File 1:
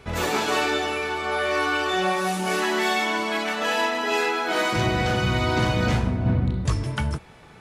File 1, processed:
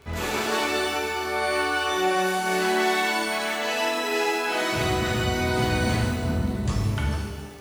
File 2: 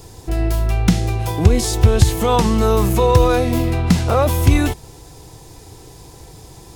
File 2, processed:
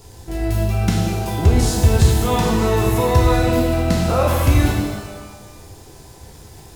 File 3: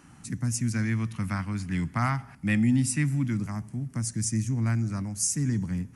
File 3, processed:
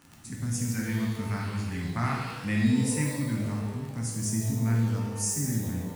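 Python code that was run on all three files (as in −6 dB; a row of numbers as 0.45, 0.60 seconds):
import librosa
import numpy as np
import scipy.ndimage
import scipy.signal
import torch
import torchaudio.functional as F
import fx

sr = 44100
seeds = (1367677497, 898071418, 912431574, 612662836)

y = fx.dmg_crackle(x, sr, seeds[0], per_s=21.0, level_db=-29.0)
y = fx.rev_shimmer(y, sr, seeds[1], rt60_s=1.2, semitones=12, shimmer_db=-8, drr_db=-1.5)
y = y * 10.0 ** (-5.5 / 20.0)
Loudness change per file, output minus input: −1.0, −1.0, −1.0 LU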